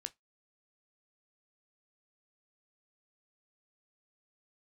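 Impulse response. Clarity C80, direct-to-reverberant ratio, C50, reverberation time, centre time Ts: 38.0 dB, 10.0 dB, 26.5 dB, 0.15 s, 3 ms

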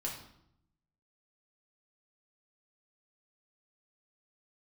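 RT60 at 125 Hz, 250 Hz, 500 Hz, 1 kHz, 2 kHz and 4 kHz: 1.2 s, 1.0 s, 0.75 s, 0.70 s, 0.60 s, 0.60 s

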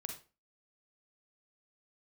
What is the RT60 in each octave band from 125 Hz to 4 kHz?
0.35 s, 0.40 s, 0.35 s, 0.30 s, 0.30 s, 0.25 s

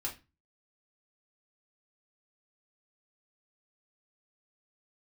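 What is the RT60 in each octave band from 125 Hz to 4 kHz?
0.45 s, 0.35 s, 0.25 s, 0.25 s, 0.25 s, 0.25 s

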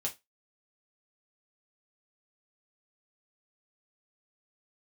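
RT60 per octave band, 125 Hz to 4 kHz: 0.20 s, 0.20 s, 0.20 s, 0.20 s, 0.20 s, 0.20 s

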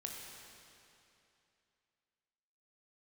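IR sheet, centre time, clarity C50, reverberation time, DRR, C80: 114 ms, 1.0 dB, 2.8 s, -0.5 dB, 2.0 dB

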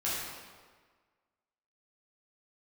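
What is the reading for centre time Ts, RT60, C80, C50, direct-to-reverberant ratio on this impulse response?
104 ms, 1.5 s, 0.5 dB, -2.0 dB, -9.0 dB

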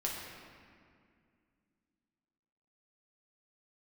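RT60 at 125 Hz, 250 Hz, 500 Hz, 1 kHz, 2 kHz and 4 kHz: 2.9 s, 3.3 s, 2.3 s, 2.1 s, 2.0 s, 1.4 s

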